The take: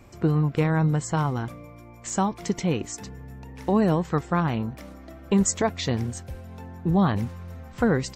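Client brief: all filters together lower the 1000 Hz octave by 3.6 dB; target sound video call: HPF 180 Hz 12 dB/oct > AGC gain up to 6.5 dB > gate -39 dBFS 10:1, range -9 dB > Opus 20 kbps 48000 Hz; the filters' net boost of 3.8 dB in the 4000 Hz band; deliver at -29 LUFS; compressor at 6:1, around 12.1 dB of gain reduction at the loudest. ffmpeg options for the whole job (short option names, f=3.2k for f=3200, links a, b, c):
-af "equalizer=f=1k:t=o:g=-5,equalizer=f=4k:t=o:g=5,acompressor=threshold=-30dB:ratio=6,highpass=180,dynaudnorm=m=6.5dB,agate=range=-9dB:threshold=-39dB:ratio=10,volume=8.5dB" -ar 48000 -c:a libopus -b:a 20k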